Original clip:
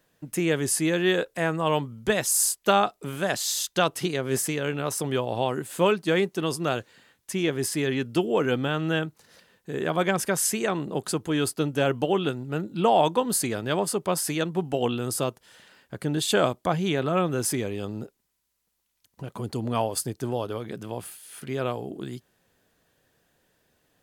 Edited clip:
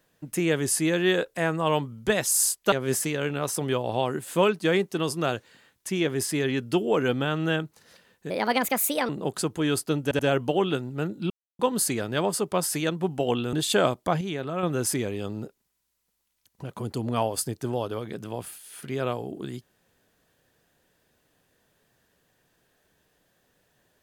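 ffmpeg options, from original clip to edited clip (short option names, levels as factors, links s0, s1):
-filter_complex "[0:a]asplit=11[s0][s1][s2][s3][s4][s5][s6][s7][s8][s9][s10];[s0]atrim=end=2.722[s11];[s1]atrim=start=4.148:end=9.734[s12];[s2]atrim=start=9.73:end=10.79,asetpts=PTS-STARTPTS,asetrate=59094,aresample=44100,atrim=end_sample=34885,asetpts=PTS-STARTPTS[s13];[s3]atrim=start=10.786:end=11.812[s14];[s4]atrim=start=11.728:end=11.812[s15];[s5]atrim=start=11.728:end=12.84,asetpts=PTS-STARTPTS,afade=t=out:st=1.108:d=0.004:c=hsin[s16];[s6]atrim=start=12.84:end=13.13,asetpts=PTS-STARTPTS,volume=0[s17];[s7]atrim=start=13.13:end=15.072,asetpts=PTS-STARTPTS,afade=t=in:d=0.004:c=hsin[s18];[s8]atrim=start=16.118:end=16.802[s19];[s9]atrim=start=16.798:end=17.222,asetpts=PTS-STARTPTS,volume=0.501[s20];[s10]atrim=start=17.218[s21];[s11][s12]acrossfade=d=0.004:c1=hsin:c2=hsin[s22];[s22][s13]acrossfade=d=0.004:c1=hsin:c2=hsin[s23];[s23][s14]acrossfade=d=0.004:c1=hsin:c2=hsin[s24];[s24][s15]acrossfade=d=0.004:c1=hsin:c2=hsin[s25];[s16][s17][s18]concat=n=3:v=0:a=1[s26];[s25][s26]acrossfade=d=0.004:c1=hsin:c2=hsin[s27];[s27][s19]acrossfade=d=0.004:c1=hsin:c2=hsin[s28];[s28][s20]acrossfade=d=0.004:c1=hsin:c2=hsin[s29];[s29][s21]acrossfade=d=0.004:c1=hsin:c2=hsin"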